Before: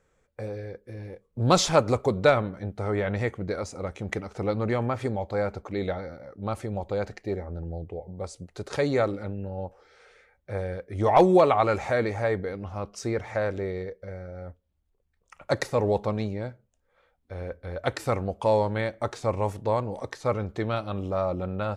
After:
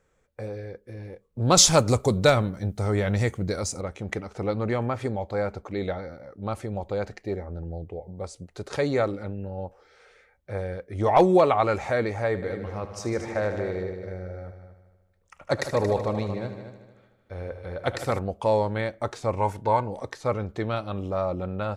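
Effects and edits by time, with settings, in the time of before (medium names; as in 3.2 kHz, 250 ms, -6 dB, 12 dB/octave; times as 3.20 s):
1.57–3.81 s: tone controls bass +6 dB, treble +14 dB
12.27–18.19 s: multi-head delay 76 ms, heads all three, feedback 41%, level -12.5 dB
19.38–19.88 s: small resonant body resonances 910/1500/2100 Hz, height 13 dB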